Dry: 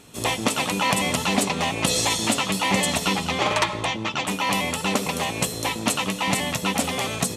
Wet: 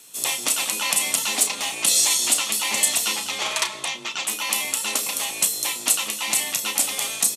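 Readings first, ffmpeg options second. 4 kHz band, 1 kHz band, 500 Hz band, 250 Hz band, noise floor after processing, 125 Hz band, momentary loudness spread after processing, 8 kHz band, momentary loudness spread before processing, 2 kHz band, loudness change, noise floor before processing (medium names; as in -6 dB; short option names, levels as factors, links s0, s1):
+1.5 dB, -7.5 dB, -10.0 dB, -14.5 dB, -35 dBFS, under -20 dB, 7 LU, +8.0 dB, 4 LU, -1.5 dB, +2.0 dB, -33 dBFS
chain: -filter_complex "[0:a]asplit=2[s0][s1];[s1]adelay=33,volume=0.355[s2];[s0][s2]amix=inputs=2:normalize=0,crystalizer=i=6:c=0,afreqshift=23,highpass=f=400:p=1,volume=0.335"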